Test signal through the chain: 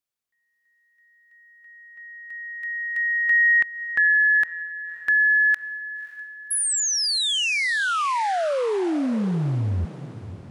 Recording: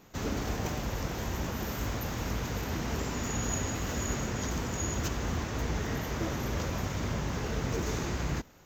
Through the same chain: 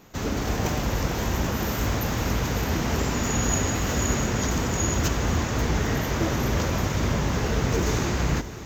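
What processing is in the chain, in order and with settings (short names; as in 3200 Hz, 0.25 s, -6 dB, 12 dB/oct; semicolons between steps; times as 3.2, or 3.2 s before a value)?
AGC gain up to 3 dB; diffused feedback echo 0.571 s, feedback 44%, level -14 dB; gain +5 dB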